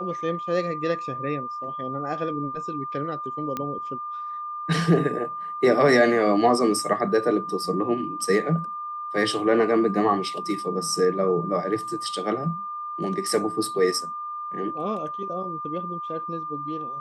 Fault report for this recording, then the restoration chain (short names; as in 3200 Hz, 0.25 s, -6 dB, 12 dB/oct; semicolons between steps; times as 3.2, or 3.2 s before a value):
tone 1200 Hz -30 dBFS
3.57 pop -15 dBFS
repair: de-click; notch 1200 Hz, Q 30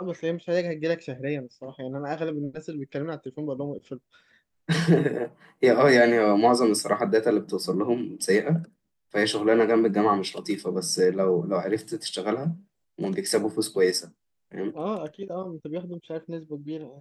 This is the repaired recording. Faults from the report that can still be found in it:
3.57 pop